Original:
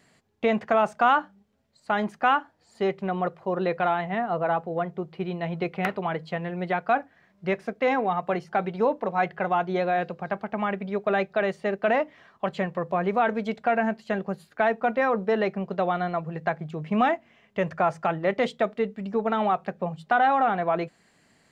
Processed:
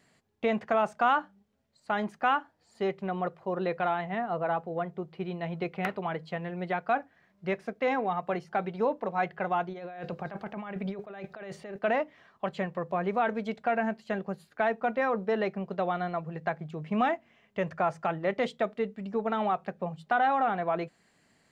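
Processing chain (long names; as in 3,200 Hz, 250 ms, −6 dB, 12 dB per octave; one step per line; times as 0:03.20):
0:09.69–0:11.79: compressor whose output falls as the input rises −34 dBFS, ratio −1
level −4.5 dB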